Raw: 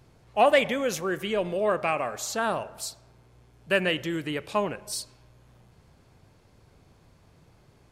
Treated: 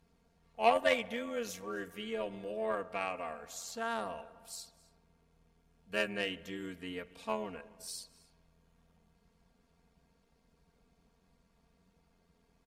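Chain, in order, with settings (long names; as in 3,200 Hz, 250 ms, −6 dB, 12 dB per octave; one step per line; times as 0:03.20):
time stretch by overlap-add 1.6×, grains 23 ms
single-tap delay 265 ms −22.5 dB
harmonic generator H 3 −15 dB, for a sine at −9.5 dBFS
level −4 dB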